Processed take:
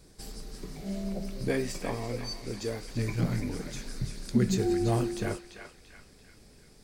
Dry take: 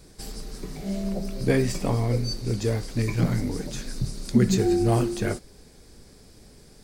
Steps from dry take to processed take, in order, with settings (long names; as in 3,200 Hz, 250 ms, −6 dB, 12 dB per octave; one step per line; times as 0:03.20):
0:01.48–0:02.88: parametric band 82 Hz −12 dB 1.9 octaves
feedback echo with a band-pass in the loop 341 ms, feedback 51%, band-pass 2,200 Hz, level −6 dB
level −5.5 dB